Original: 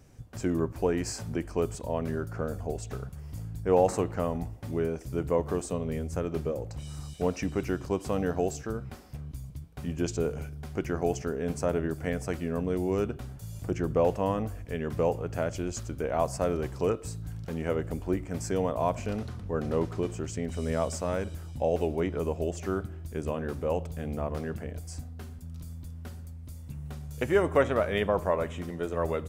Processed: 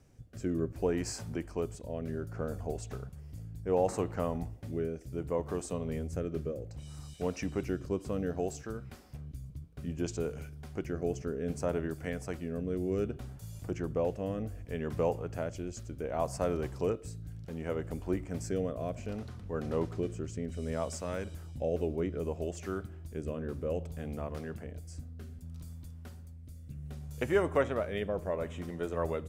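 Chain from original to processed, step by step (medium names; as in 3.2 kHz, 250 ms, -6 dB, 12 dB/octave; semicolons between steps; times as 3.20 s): rotary cabinet horn 0.65 Hz; trim -3 dB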